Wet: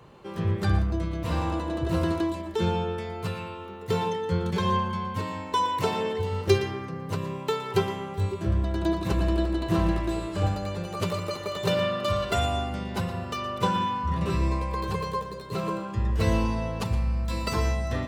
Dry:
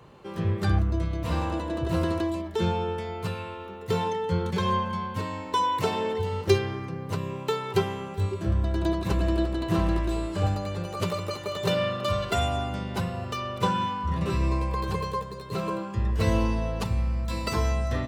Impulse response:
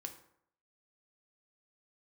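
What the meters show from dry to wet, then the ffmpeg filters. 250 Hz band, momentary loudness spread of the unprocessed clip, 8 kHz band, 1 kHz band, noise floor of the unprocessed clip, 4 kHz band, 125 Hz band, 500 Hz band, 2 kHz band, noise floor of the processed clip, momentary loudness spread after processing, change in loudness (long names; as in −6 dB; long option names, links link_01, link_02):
+0.5 dB, 7 LU, 0.0 dB, 0.0 dB, −39 dBFS, +0.5 dB, 0.0 dB, 0.0 dB, +0.5 dB, −38 dBFS, 7 LU, 0.0 dB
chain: -filter_complex "[0:a]asplit=2[link_01][link_02];[1:a]atrim=start_sample=2205,adelay=117[link_03];[link_02][link_03]afir=irnorm=-1:irlink=0,volume=-9dB[link_04];[link_01][link_04]amix=inputs=2:normalize=0"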